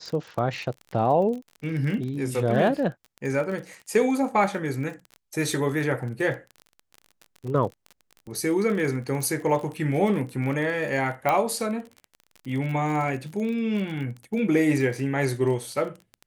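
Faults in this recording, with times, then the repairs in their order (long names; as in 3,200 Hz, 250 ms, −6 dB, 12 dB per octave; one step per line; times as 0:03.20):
surface crackle 34 per second −32 dBFS
0:11.29: click −11 dBFS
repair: click removal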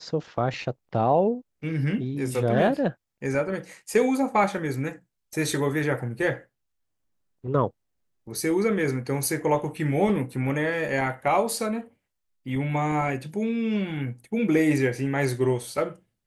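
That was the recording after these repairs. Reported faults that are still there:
none of them is left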